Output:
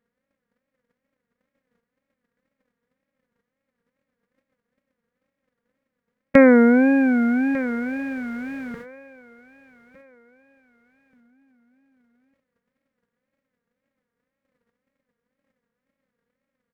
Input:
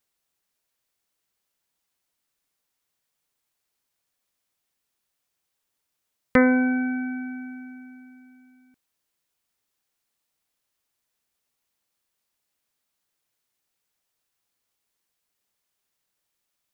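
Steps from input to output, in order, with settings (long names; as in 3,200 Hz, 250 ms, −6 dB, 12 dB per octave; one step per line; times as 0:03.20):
compressor on every frequency bin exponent 0.4
noise gate −41 dBFS, range −39 dB
hollow resonant body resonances 200/520/1,700 Hz, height 7 dB, ringing for 30 ms
on a send: repeating echo 1,199 ms, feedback 32%, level −17.5 dB
on the sum: tape wow and flutter 130 cents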